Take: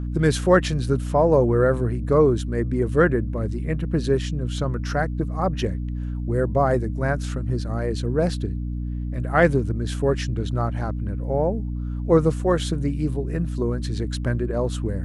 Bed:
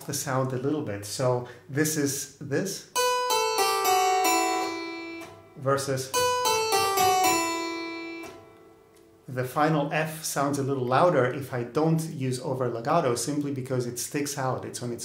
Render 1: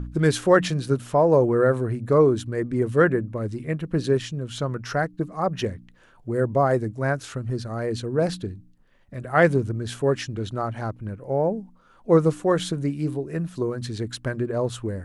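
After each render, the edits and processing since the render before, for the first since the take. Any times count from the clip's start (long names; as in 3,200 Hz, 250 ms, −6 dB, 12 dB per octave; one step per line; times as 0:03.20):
hum removal 60 Hz, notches 5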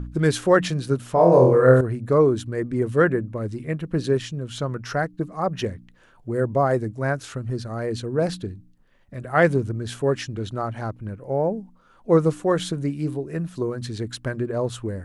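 0:01.13–0:01.81: flutter between parallel walls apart 4 metres, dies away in 0.61 s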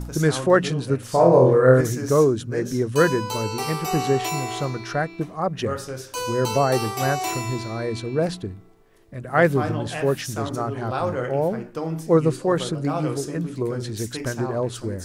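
mix in bed −4.5 dB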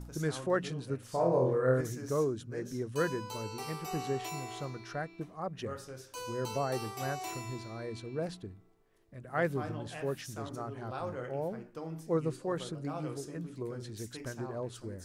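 level −13.5 dB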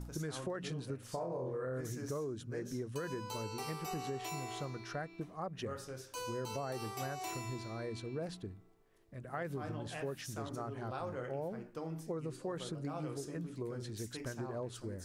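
brickwall limiter −25.5 dBFS, peak gain reduction 9 dB
downward compressor, threshold −36 dBFS, peak gain reduction 7 dB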